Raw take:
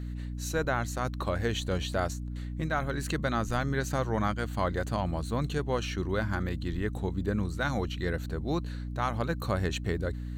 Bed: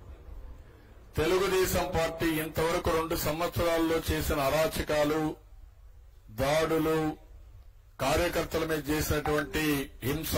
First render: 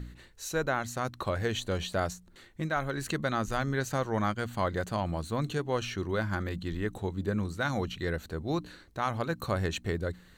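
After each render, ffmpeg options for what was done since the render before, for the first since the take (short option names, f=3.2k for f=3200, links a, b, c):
-af "bandreject=f=60:t=h:w=4,bandreject=f=120:t=h:w=4,bandreject=f=180:t=h:w=4,bandreject=f=240:t=h:w=4,bandreject=f=300:t=h:w=4"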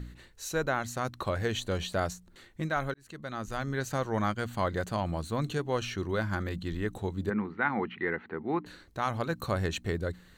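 -filter_complex "[0:a]asplit=3[a][b][c];[a]afade=t=out:st=7.29:d=0.02[d];[b]highpass=220,equalizer=f=220:t=q:w=4:g=6,equalizer=f=390:t=q:w=4:g=4,equalizer=f=590:t=q:w=4:g=-9,equalizer=f=870:t=q:w=4:g=8,equalizer=f=1.3k:t=q:w=4:g=3,equalizer=f=2k:t=q:w=4:g=9,lowpass=f=2.5k:w=0.5412,lowpass=f=2.5k:w=1.3066,afade=t=in:st=7.29:d=0.02,afade=t=out:st=8.65:d=0.02[e];[c]afade=t=in:st=8.65:d=0.02[f];[d][e][f]amix=inputs=3:normalize=0,asplit=2[g][h];[g]atrim=end=2.94,asetpts=PTS-STARTPTS,afade=t=out:st=2.936:d=0.004:c=hsin[i];[h]atrim=start=2.94,asetpts=PTS-STARTPTS,afade=t=in:d=1.41:c=qsin[j];[i][j]concat=n=2:v=0:a=1"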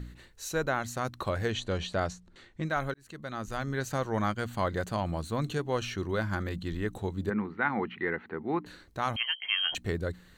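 -filter_complex "[0:a]asettb=1/sr,asplit=3[a][b][c];[a]atrim=end=1.504[d];[b]atrim=start=1.5:end=2.67,asetpts=PTS-STARTPTS,afade=t=in:d=0.004:c=qsin,afade=t=out:st=1.166:d=0.004:c=qsin,lowpass=6.3k[e];[c]atrim=start=2.666[f];[d][e]acrossfade=d=0.004:c1=hsin:c2=qsin[g];[g][f]acrossfade=d=0.004:c1=qsin:c2=hsin,asettb=1/sr,asplit=3[h][i][j];[h]atrim=end=9.164[k];[i]atrim=start=9.16:end=9.75,asetpts=PTS-STARTPTS,afade=t=in:d=0.004:c=qsin,afade=t=out:st=0.586:d=0.004:c=qsin,lowpass=f=2.8k:t=q:w=0.5098,lowpass=f=2.8k:t=q:w=0.6013,lowpass=f=2.8k:t=q:w=0.9,lowpass=f=2.8k:t=q:w=2.563,afreqshift=-3300[l];[j]atrim=start=9.746[m];[k][l]acrossfade=d=0.004:c1=hsin:c2=qsin[n];[n][m]acrossfade=d=0.004:c1=qsin:c2=hsin"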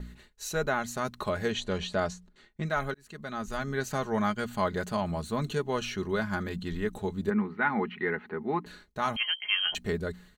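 -af "agate=range=-33dB:threshold=-48dB:ratio=3:detection=peak,aecho=1:1:4.8:0.56"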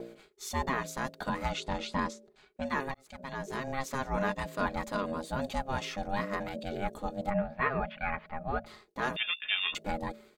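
-af "aeval=exprs='val(0)*sin(2*PI*400*n/s)':c=same"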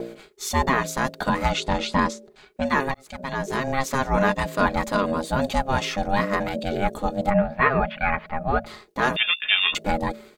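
-af "volume=10.5dB"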